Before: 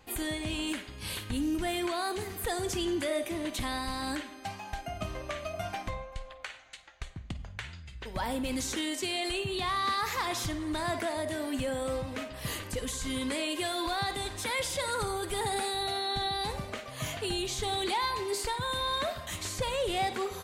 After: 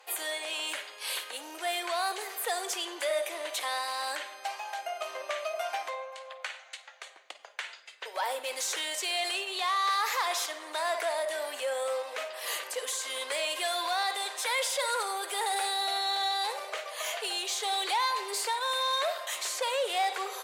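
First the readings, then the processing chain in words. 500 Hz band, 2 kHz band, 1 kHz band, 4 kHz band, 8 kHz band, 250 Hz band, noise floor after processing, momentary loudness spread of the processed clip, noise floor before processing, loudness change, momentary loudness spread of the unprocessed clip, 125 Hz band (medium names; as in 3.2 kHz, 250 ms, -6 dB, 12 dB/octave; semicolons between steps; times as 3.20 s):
0.0 dB, +3.0 dB, +3.0 dB, +3.0 dB, +3.5 dB, -17.0 dB, -51 dBFS, 11 LU, -48 dBFS, +1.5 dB, 10 LU, under -40 dB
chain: Chebyshev shaper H 5 -23 dB, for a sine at -22 dBFS; steep high-pass 480 Hz 36 dB/octave; trim +2 dB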